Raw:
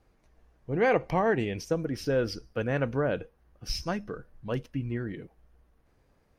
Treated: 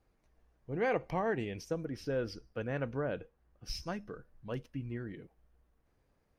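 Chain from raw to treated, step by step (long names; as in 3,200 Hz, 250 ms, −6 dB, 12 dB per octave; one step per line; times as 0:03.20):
0:01.85–0:03.68: high-shelf EQ 6,400 Hz −6 dB
level −7.5 dB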